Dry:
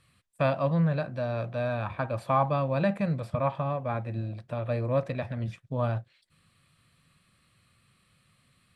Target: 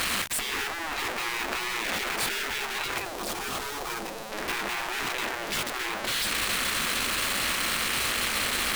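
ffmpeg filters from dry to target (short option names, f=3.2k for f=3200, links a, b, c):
-af "aeval=exprs='val(0)+0.5*0.0398*sgn(val(0))':c=same,asetnsamples=n=441:p=0,asendcmd='2.98 equalizer g -3.5;4.32 equalizer g 6',equalizer=f=1.9k:t=o:w=1.7:g=6,afftfilt=real='re*lt(hypot(re,im),0.0708)':imag='im*lt(hypot(re,im),0.0708)':win_size=1024:overlap=0.75,volume=6dB"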